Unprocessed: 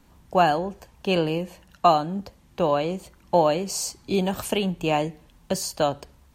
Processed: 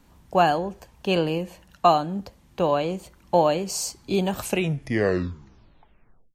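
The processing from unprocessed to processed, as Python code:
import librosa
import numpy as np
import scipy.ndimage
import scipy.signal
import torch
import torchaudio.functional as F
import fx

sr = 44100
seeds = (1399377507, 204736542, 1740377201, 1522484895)

y = fx.tape_stop_end(x, sr, length_s=1.96)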